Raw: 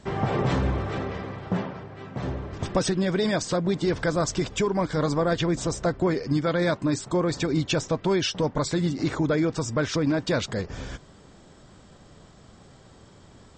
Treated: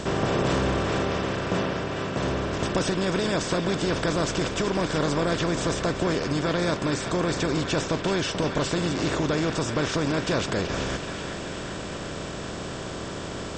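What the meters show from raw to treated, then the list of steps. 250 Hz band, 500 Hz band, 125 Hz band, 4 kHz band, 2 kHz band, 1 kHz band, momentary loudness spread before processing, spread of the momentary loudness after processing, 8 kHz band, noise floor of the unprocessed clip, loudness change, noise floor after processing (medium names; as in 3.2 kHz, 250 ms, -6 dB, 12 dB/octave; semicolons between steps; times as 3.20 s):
-0.5 dB, +0.5 dB, -0.5 dB, +3.0 dB, +3.5 dB, +2.5 dB, 9 LU, 9 LU, +1.5 dB, -52 dBFS, -0.5 dB, -34 dBFS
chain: spectral levelling over time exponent 0.4; band-passed feedback delay 381 ms, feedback 68%, band-pass 2.3 kHz, level -6 dB; trim -6.5 dB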